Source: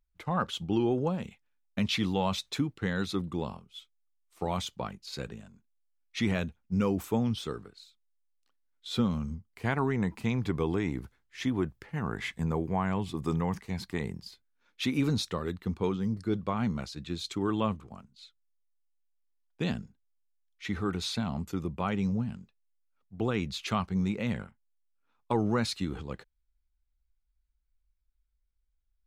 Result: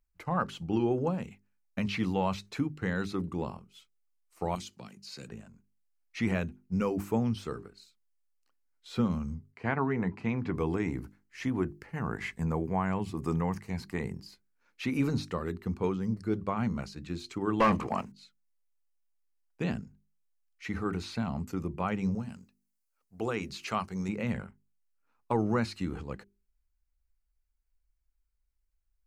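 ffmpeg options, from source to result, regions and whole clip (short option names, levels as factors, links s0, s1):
-filter_complex "[0:a]asettb=1/sr,asplit=3[s0][s1][s2];[s0]atrim=end=4.554[s3];[s1]atrim=start=4.55:end=5.28,asetpts=PTS-STARTPTS,afade=t=in:d=0.004:c=qsin,afade=t=out:st=0.726:d=0.004:c=qsin,highpass=190,equalizer=f=6600:t=o:w=2.2:g=5.5,acrossover=split=260|3000[s4][s5][s6];[s5]acompressor=threshold=0.00282:ratio=4:attack=3.2:release=140:knee=2.83:detection=peak[s7];[s4][s7][s6]amix=inputs=3:normalize=0[s8];[s2]atrim=start=5.276[s9];[s3][s8]acrossfade=d=0.004:c1=hsin:c2=qsin[s10];[s10][s9]acrossfade=d=0.004:c1=qsin:c2=hsin,asettb=1/sr,asplit=3[s11][s12][s13];[s11]atrim=end=9.524[s14];[s12]atrim=start=9.52:end=10.54,asetpts=PTS-STARTPTS,afade=t=in:d=0.004:c=qsin,afade=t=out:st=1.016:d=0.004:c=qsin,highpass=100,lowpass=3400,asplit=2[s15][s16];[s16]adelay=12,volume=0.224[s17];[s15][s17]amix=inputs=2:normalize=0,atrim=end_sample=44982[s18];[s13]atrim=start=10.536[s19];[s14][s18]acrossfade=d=0.004:c1=hsin:c2=qsin[s20];[s20][s19]acrossfade=d=0.004:c1=qsin:c2=hsin,asettb=1/sr,asplit=3[s21][s22][s23];[s21]atrim=end=17.604[s24];[s22]atrim=start=17.6:end=18.12,asetpts=PTS-STARTPTS,afade=t=in:d=0.004:c=qsin,afade=t=out:st=0.516:d=0.004:c=qsin,equalizer=f=1400:t=o:w=0.29:g=-11,asplit=2[s25][s26];[s26]highpass=f=720:p=1,volume=35.5,asoftclip=type=tanh:threshold=0.188[s27];[s25][s27]amix=inputs=2:normalize=0,lowpass=f=2900:p=1,volume=0.501[s28];[s23]atrim=start=18.116[s29];[s24][s28]acrossfade=d=0.004:c1=hsin:c2=qsin[s30];[s30][s29]acrossfade=d=0.004:c1=qsin:c2=hsin,asettb=1/sr,asplit=3[s31][s32][s33];[s31]atrim=end=22.154[s34];[s32]atrim=start=22.15:end=24.09,asetpts=PTS-STARTPTS,afade=t=in:d=0.004:c=qsin,afade=t=out:st=1.936:d=0.004:c=qsin,bass=f=250:g=-7,treble=f=4000:g=8,bandreject=f=50:t=h:w=6,bandreject=f=100:t=h:w=6,bandreject=f=150:t=h:w=6,bandreject=f=200:t=h:w=6,bandreject=f=250:t=h:w=6,bandreject=f=300:t=h:w=6,bandreject=f=350:t=h:w=6[s35];[s33]atrim=start=24.086[s36];[s34][s35]acrossfade=d=0.004:c1=hsin:c2=qsin[s37];[s37][s36]acrossfade=d=0.004:c1=qsin:c2=hsin,acrossover=split=3700[s38][s39];[s39]acompressor=threshold=0.00501:ratio=4:attack=1:release=60[s40];[s38][s40]amix=inputs=2:normalize=0,equalizer=f=3500:t=o:w=0.28:g=-11.5,bandreject=f=50:t=h:w=6,bandreject=f=100:t=h:w=6,bandreject=f=150:t=h:w=6,bandreject=f=200:t=h:w=6,bandreject=f=250:t=h:w=6,bandreject=f=300:t=h:w=6,bandreject=f=350:t=h:w=6,bandreject=f=400:t=h:w=6"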